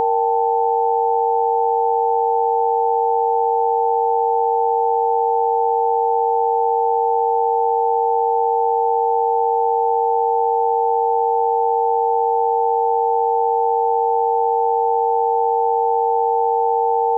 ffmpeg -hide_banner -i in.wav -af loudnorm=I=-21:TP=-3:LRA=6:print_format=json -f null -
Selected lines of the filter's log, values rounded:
"input_i" : "-17.6",
"input_tp" : "-9.3",
"input_lra" : "0.0",
"input_thresh" : "-27.6",